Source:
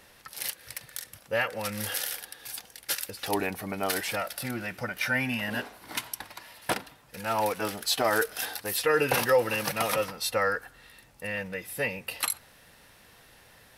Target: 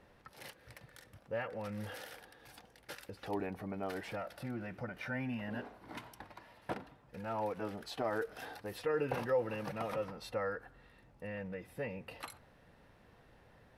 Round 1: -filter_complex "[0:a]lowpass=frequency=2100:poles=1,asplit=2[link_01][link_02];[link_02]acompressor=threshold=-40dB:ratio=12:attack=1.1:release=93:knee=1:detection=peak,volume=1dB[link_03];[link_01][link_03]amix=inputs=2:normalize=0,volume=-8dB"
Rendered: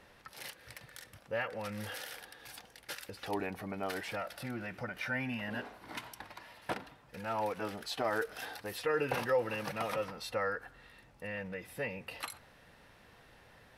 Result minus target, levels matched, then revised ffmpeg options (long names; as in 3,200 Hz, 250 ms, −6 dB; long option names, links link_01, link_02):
2,000 Hz band +3.5 dB
-filter_complex "[0:a]lowpass=frequency=660:poles=1,asplit=2[link_01][link_02];[link_02]acompressor=threshold=-40dB:ratio=12:attack=1.1:release=93:knee=1:detection=peak,volume=1dB[link_03];[link_01][link_03]amix=inputs=2:normalize=0,volume=-8dB"